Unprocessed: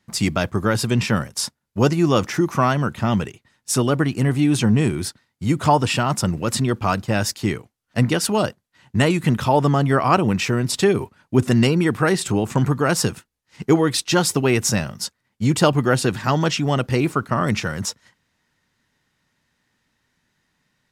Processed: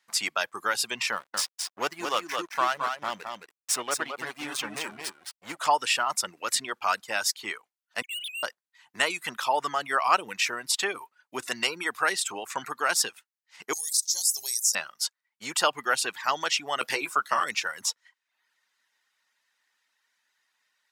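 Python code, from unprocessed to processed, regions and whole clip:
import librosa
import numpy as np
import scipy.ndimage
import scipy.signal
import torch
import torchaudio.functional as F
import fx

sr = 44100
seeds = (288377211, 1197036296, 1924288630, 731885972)

y = fx.chain(x, sr, fx.backlash(play_db=-21.5),
    fx.echo_single(ms=217, db=-4.5), at=(1.12, 5.57))
y = fx.chain(y, sr, fx.sine_speech(),
    fx.steep_highpass(hz=2900.0, slope=36),
    fx.leveller(passes=5), at=(8.02, 8.43))
y = fx.chain(y, sr, fx.cheby2_bandstop(low_hz=110.0, high_hz=3000.0, order=4, stop_db=40),
    fx.env_flatten(amount_pct=70), at=(13.73, 14.75))
y = fx.chain(y, sr, fx.doubler(ms=14.0, db=-5.5),
    fx.band_squash(depth_pct=100), at=(16.81, 17.44))
y = fx.dereverb_blind(y, sr, rt60_s=0.61)
y = scipy.signal.sosfilt(scipy.signal.butter(2, 970.0, 'highpass', fs=sr, output='sos'), y)
y = y * 10.0 ** (-1.0 / 20.0)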